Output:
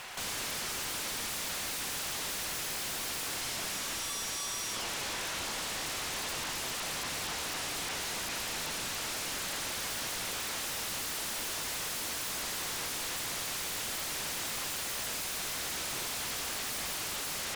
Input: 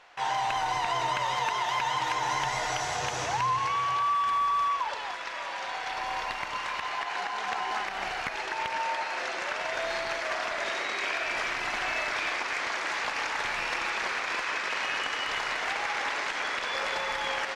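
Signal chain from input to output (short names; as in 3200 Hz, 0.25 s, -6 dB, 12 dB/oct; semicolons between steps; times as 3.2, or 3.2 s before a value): bell 3400 Hz +7 dB 1.6 oct; in parallel at 0 dB: limiter -29 dBFS, peak gain reduction 14 dB; on the sum: wavefolder -32 dBFS; reverse echo 0.579 s -12 dB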